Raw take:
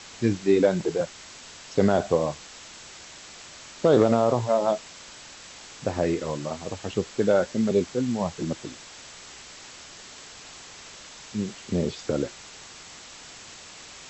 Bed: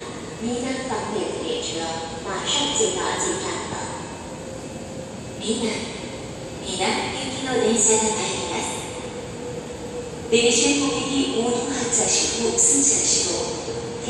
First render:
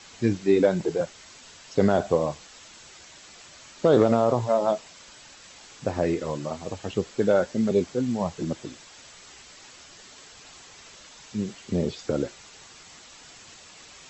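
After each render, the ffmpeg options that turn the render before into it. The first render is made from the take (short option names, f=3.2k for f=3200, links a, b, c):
-af "afftdn=nr=6:nf=-45"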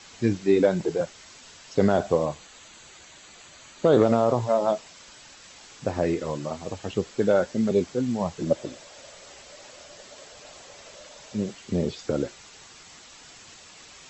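-filter_complex "[0:a]asettb=1/sr,asplit=3[a][b][c];[a]atrim=end=2.254[d];[b]atrim=start=2.25:end=4.03,asetpts=PTS-STARTPTS,afade=t=in:d=0.004:c=qsin,afade=t=out:st=1.776:d=0.004:c=qsin,bandreject=f=5.3k:w=5.7[e];[c]atrim=start=4.026[f];[d][e]acrossfade=d=0.004:c1=hsin:c2=qsin[g];[g][f]acrossfade=d=0.004:c1=qsin:c2=hsin,asettb=1/sr,asplit=3[h][i][j];[h]atrim=end=8.464[k];[i]atrim=start=8.46:end=11.51,asetpts=PTS-STARTPTS,afade=t=in:d=0.004:c=qsin,afade=t=out:st=3.046:d=0.004:c=qsin,equalizer=f=580:t=o:w=0.52:g=14.5[l];[j]atrim=start=11.506[m];[k][l]acrossfade=d=0.004:c1=hsin:c2=qsin[n];[n][m]acrossfade=d=0.004:c1=qsin:c2=hsin"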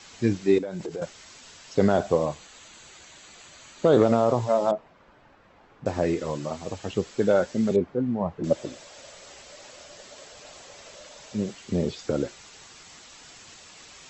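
-filter_complex "[0:a]asettb=1/sr,asplit=3[a][b][c];[a]atrim=end=0.584[d];[b]atrim=start=0.58:end=1.02,asetpts=PTS-STARTPTS,afade=t=in:d=0.004:c=qsin,afade=t=out:st=0.436:d=0.004:c=qsin,acompressor=threshold=-29dB:ratio=8:attack=3.2:release=140:knee=1:detection=peak[e];[c]atrim=start=1.016[f];[d][e]acrossfade=d=0.004:c1=hsin:c2=qsin[g];[g][f]acrossfade=d=0.004:c1=qsin:c2=hsin,asettb=1/sr,asplit=3[h][i][j];[h]atrim=end=4.714[k];[i]atrim=start=4.71:end=5.86,asetpts=PTS-STARTPTS,afade=t=in:d=0.004:c=qsin,afade=t=out:st=1.146:d=0.004:c=qsin,lowpass=1.2k[l];[j]atrim=start=5.856[m];[k][l]acrossfade=d=0.004:c1=hsin:c2=qsin[n];[n][m]acrossfade=d=0.004:c1=qsin:c2=hsin,asettb=1/sr,asplit=3[o][p][q];[o]atrim=end=7.764[r];[p]atrim=start=7.76:end=8.44,asetpts=PTS-STARTPTS,afade=t=in:d=0.004:c=qsin,afade=t=out:st=0.676:d=0.004:c=qsin,lowpass=1.4k[s];[q]atrim=start=8.436[t];[r][s]acrossfade=d=0.004:c1=hsin:c2=qsin[u];[u][t]acrossfade=d=0.004:c1=qsin:c2=hsin"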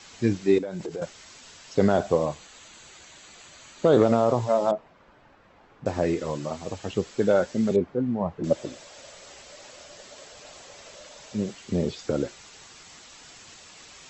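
-af anull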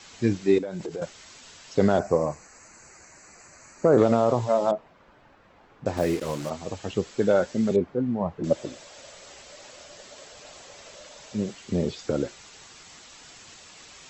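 -filter_complex "[0:a]asettb=1/sr,asplit=3[a][b][c];[a]atrim=end=1.994[d];[b]atrim=start=1.99:end=3.98,asetpts=PTS-STARTPTS,afade=t=in:d=0.004:c=qsin,afade=t=out:st=1.986:d=0.004:c=qsin,asuperstop=centerf=3400:order=4:qfactor=1.3[e];[c]atrim=start=3.976[f];[d][e]acrossfade=d=0.004:c1=hsin:c2=qsin[g];[g][f]acrossfade=d=0.004:c1=qsin:c2=hsin,asettb=1/sr,asplit=3[h][i][j];[h]atrim=end=5.974[k];[i]atrim=start=5.97:end=6.5,asetpts=PTS-STARTPTS,afade=t=in:d=0.004:c=qsin,afade=t=out:st=0.526:d=0.004:c=qsin,acrusher=bits=5:mix=0:aa=0.5[l];[j]atrim=start=6.496[m];[k][l]acrossfade=d=0.004:c1=hsin:c2=qsin[n];[n][m]acrossfade=d=0.004:c1=qsin:c2=hsin"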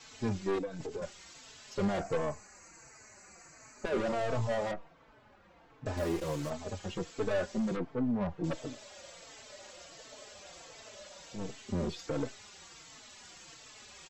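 -filter_complex "[0:a]aeval=exprs='(tanh(17.8*val(0)+0.45)-tanh(0.45))/17.8':c=same,asplit=2[a][b];[b]adelay=4,afreqshift=-1.4[c];[a][c]amix=inputs=2:normalize=1"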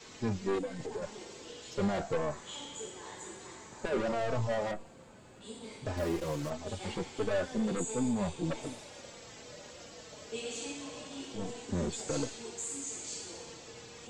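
-filter_complex "[1:a]volume=-22.5dB[a];[0:a][a]amix=inputs=2:normalize=0"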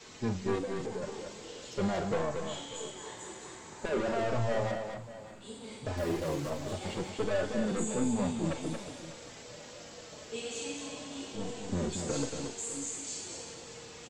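-filter_complex "[0:a]asplit=2[a][b];[b]adelay=43,volume=-12dB[c];[a][c]amix=inputs=2:normalize=0,aecho=1:1:229|597:0.501|0.168"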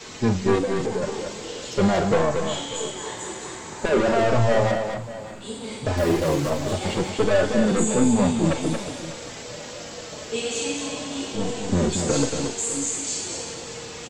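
-af "volume=11.5dB"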